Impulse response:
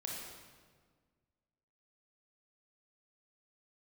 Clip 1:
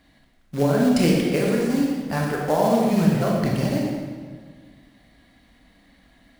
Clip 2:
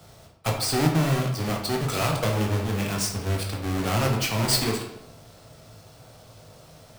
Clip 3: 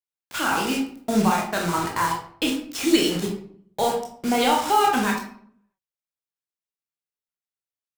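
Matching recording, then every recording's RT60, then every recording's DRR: 1; 1.6 s, 0.85 s, 0.60 s; -2.5 dB, 0.0 dB, -1.0 dB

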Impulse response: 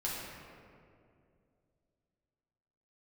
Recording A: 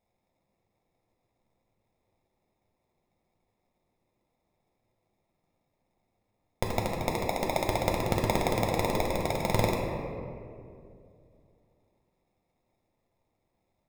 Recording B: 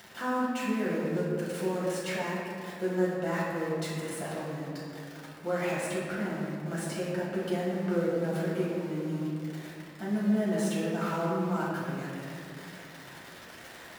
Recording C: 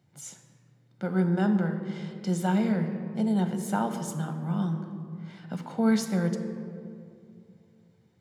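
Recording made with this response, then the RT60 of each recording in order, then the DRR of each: B; 2.4 s, 2.4 s, 2.5 s; -1.0 dB, -7.0 dB, 6.0 dB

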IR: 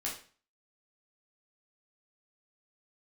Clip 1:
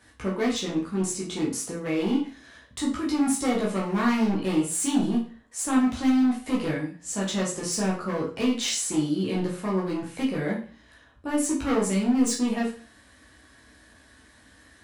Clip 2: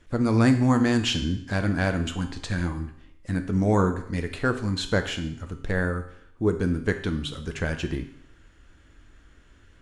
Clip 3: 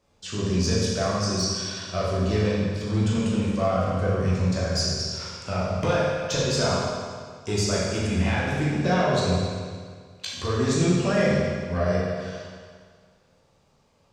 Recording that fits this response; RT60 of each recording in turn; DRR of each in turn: 1; 0.40 s, 0.70 s, 1.8 s; -5.5 dB, 6.5 dB, -7.0 dB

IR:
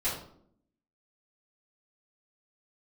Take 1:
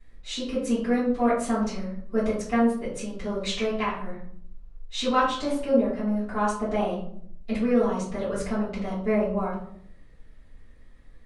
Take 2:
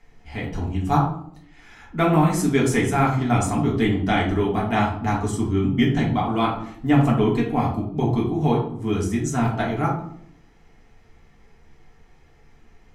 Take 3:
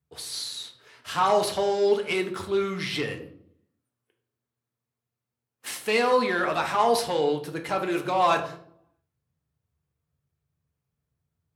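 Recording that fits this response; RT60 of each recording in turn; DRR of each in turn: 1; 0.65 s, 0.65 s, 0.65 s; -12.5 dB, -4.0 dB, 3.5 dB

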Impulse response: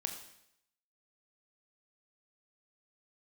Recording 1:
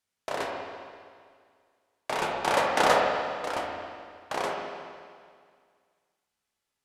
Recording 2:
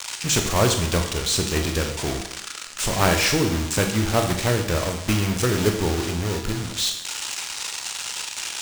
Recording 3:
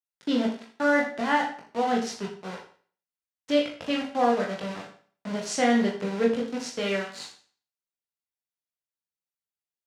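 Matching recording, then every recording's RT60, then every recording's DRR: 2; 2.0 s, 0.75 s, 0.45 s; -1.5 dB, 4.5 dB, -2.0 dB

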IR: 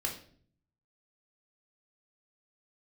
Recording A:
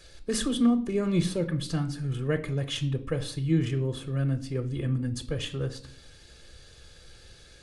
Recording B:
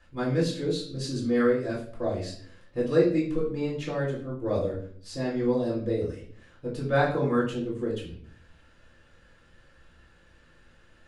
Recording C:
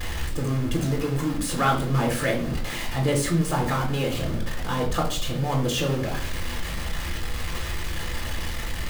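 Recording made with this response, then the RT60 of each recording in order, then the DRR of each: C; 0.55 s, 0.50 s, 0.50 s; 8.0 dB, -5.5 dB, -1.0 dB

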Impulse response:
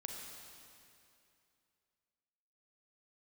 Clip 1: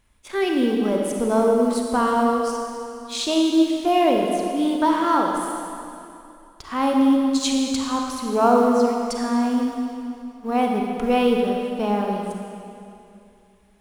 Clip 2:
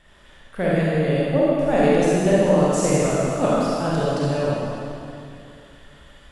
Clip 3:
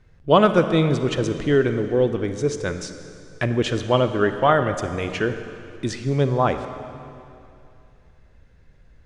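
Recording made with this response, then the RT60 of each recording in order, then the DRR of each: 1; 2.6 s, 2.6 s, 2.6 s; 0.5 dB, -7.5 dB, 9.0 dB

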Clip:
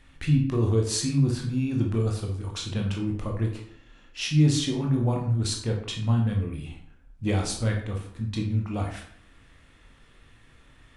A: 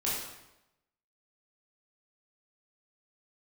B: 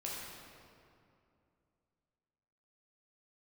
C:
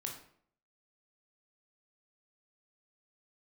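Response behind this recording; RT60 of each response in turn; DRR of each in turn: C; 0.90 s, 2.5 s, 0.60 s; -7.5 dB, -5.5 dB, 0.5 dB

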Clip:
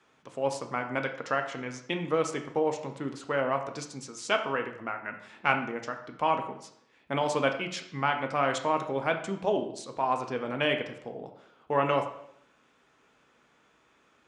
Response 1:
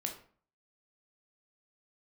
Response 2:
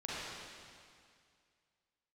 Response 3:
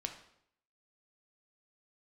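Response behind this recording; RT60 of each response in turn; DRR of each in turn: 3; 0.45 s, 2.2 s, 0.70 s; 2.0 dB, -8.5 dB, 4.5 dB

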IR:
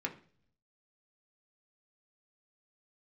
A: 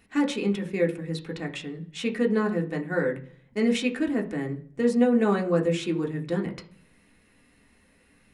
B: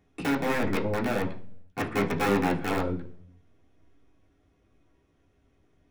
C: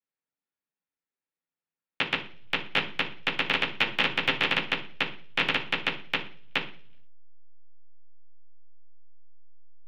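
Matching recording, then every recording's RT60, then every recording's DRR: A; 0.45 s, 0.45 s, 0.45 s; 0.5 dB, -7.0 dB, -17.0 dB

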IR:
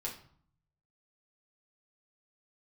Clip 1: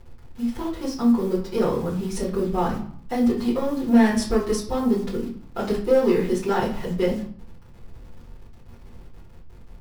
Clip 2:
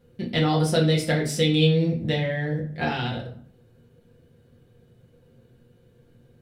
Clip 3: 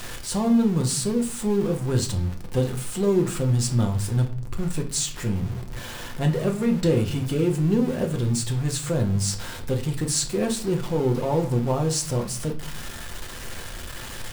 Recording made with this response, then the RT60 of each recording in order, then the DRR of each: 2; 0.55 s, 0.55 s, 0.55 s; -9.5 dB, -4.0 dB, 2.5 dB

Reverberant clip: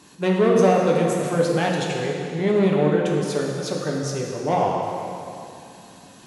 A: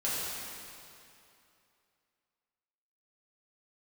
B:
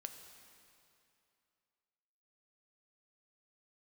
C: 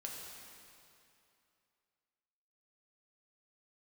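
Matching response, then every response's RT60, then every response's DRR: C; 2.7 s, 2.7 s, 2.7 s; -9.0 dB, 6.0 dB, -2.0 dB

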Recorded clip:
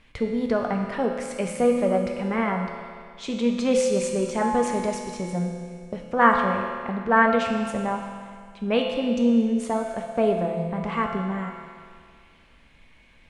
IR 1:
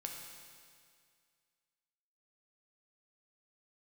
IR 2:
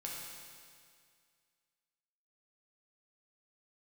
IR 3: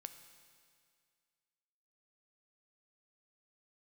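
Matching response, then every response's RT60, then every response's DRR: 1; 2.1 s, 2.1 s, 2.1 s; 1.0 dB, -3.5 dB, 8.5 dB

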